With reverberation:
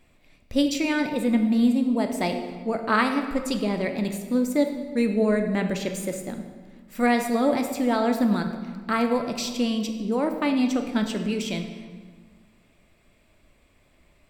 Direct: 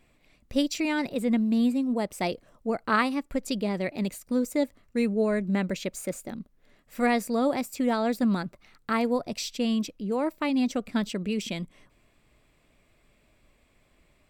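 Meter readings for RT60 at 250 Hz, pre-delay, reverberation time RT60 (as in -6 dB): 2.0 s, 3 ms, 1.5 s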